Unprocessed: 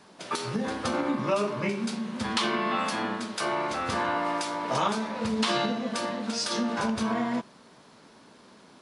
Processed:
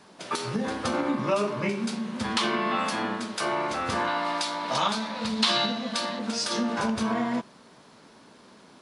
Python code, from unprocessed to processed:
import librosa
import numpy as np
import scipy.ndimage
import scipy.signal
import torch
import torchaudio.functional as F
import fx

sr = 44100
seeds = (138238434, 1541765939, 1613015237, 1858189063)

y = fx.graphic_eq_15(x, sr, hz=(100, 400, 4000), db=(-11, -8, 8), at=(4.07, 6.19))
y = y * librosa.db_to_amplitude(1.0)